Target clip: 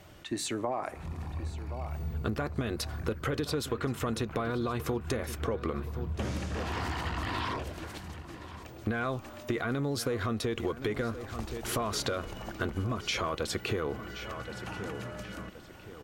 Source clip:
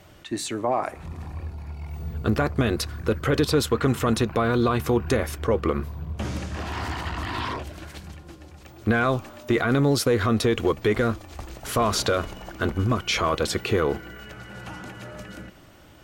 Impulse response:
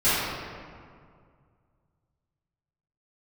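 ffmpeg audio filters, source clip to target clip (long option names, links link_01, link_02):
-filter_complex "[0:a]asplit=2[link_01][link_02];[link_02]adelay=1073,lowpass=frequency=4500:poles=1,volume=-16dB,asplit=2[link_03][link_04];[link_04]adelay=1073,lowpass=frequency=4500:poles=1,volume=0.38,asplit=2[link_05][link_06];[link_06]adelay=1073,lowpass=frequency=4500:poles=1,volume=0.38[link_07];[link_01][link_03][link_05][link_07]amix=inputs=4:normalize=0,acompressor=threshold=-26dB:ratio=6,volume=-2.5dB"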